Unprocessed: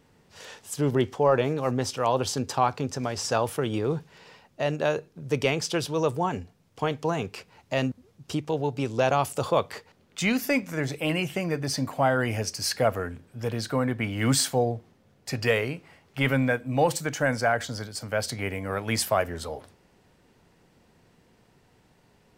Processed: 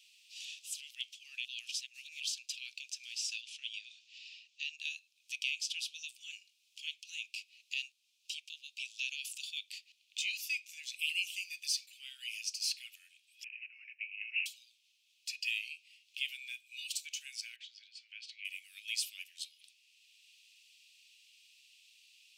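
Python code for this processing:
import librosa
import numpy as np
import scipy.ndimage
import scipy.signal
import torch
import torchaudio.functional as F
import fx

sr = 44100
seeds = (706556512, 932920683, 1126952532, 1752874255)

y = fx.lowpass(x, sr, hz=7000.0, slope=24, at=(3.41, 4.79))
y = fx.high_shelf(y, sr, hz=4200.0, db=7.5, at=(10.99, 11.86))
y = fx.resample_bad(y, sr, factor=8, down='none', up='filtered', at=(13.44, 14.46))
y = fx.lowpass(y, sr, hz=1900.0, slope=12, at=(17.56, 18.45))
y = fx.edit(y, sr, fx.reverse_span(start_s=1.45, length_s=0.75), tone=tone)
y = scipy.signal.sosfilt(scipy.signal.cheby1(6, 1.0, 2500.0, 'highpass', fs=sr, output='sos'), y)
y = fx.high_shelf(y, sr, hz=6600.0, db=-12.0)
y = fx.band_squash(y, sr, depth_pct=40)
y = F.gain(torch.from_numpy(y), 1.5).numpy()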